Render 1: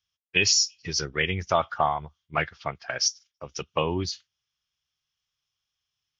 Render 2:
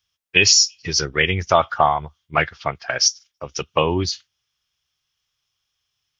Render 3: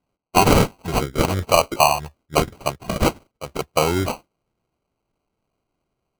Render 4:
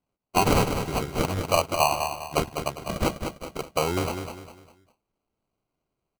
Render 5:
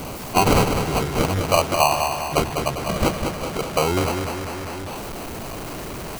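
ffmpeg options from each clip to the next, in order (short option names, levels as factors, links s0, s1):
-af "equalizer=f=190:t=o:w=0.77:g=-2.5,volume=2.37"
-af "acrusher=samples=25:mix=1:aa=0.000001"
-af "aecho=1:1:201|402|603|804:0.447|0.161|0.0579|0.0208,volume=0.473"
-af "aeval=exprs='val(0)+0.5*0.0398*sgn(val(0))':c=same,volume=1.41"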